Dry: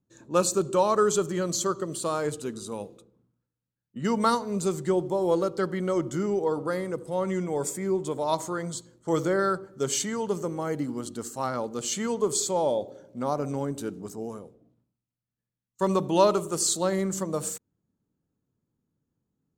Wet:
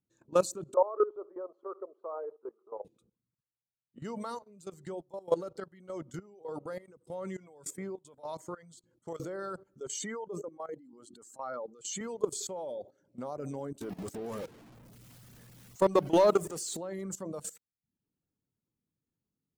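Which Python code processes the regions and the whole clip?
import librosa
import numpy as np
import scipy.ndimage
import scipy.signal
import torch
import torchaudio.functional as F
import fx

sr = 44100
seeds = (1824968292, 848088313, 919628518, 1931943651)

y = fx.chain(x, sr, fx.cheby1_bandpass(low_hz=390.0, high_hz=1200.0, order=3),
    fx.echo_feedback(ms=62, feedback_pct=30, wet_db=-18), at=(0.74, 2.85))
y = fx.chain(y, sr, fx.highpass(hz=58.0, slope=12),
    fx.dynamic_eq(hz=330.0, q=2.5, threshold_db=-37.0, ratio=4.0, max_db=-4),
    fx.chopper(hz=1.7, depth_pct=65, duty_pct=50), at=(4.13, 9.2))
y = fx.chain(y, sr, fx.spec_expand(power=1.5),
    fx.highpass(hz=880.0, slope=6),
    fx.sustainer(db_per_s=29.0), at=(9.8, 12.01))
y = fx.chain(y, sr, fx.zero_step(step_db=-34.0),
    fx.leveller(passes=1), at=(13.81, 16.77))
y = fx.dereverb_blind(y, sr, rt60_s=0.51)
y = fx.dynamic_eq(y, sr, hz=580.0, q=1.2, threshold_db=-39.0, ratio=4.0, max_db=6)
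y = fx.level_steps(y, sr, step_db=17)
y = y * 10.0 ** (-4.0 / 20.0)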